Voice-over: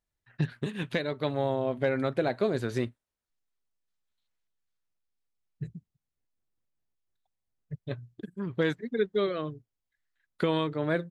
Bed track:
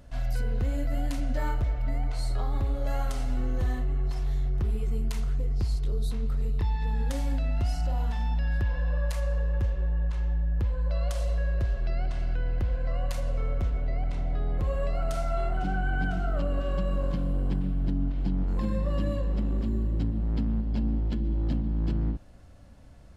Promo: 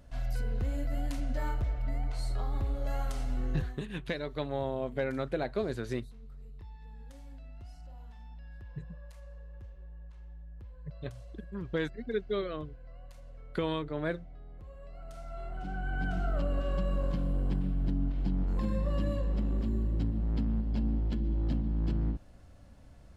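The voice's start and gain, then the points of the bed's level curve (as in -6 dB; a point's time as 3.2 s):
3.15 s, -5.0 dB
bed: 3.56 s -4.5 dB
3.82 s -20.5 dB
14.8 s -20.5 dB
16.19 s -3 dB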